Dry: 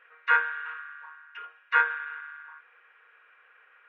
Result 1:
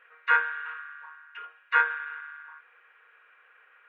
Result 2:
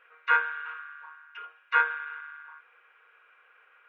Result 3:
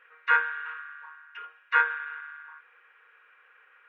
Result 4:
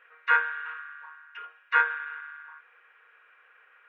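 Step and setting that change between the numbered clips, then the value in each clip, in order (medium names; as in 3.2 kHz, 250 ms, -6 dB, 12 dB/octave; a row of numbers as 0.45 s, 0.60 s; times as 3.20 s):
band-stop, frequency: 5.5 kHz, 1.8 kHz, 670 Hz, 210 Hz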